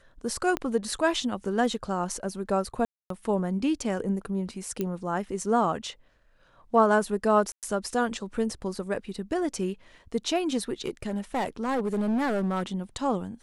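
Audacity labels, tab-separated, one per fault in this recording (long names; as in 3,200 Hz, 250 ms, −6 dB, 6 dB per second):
0.570000	0.570000	click −14 dBFS
2.850000	3.100000	drop-out 253 ms
4.810000	4.810000	click −16 dBFS
7.520000	7.630000	drop-out 108 ms
10.860000	12.630000	clipping −23 dBFS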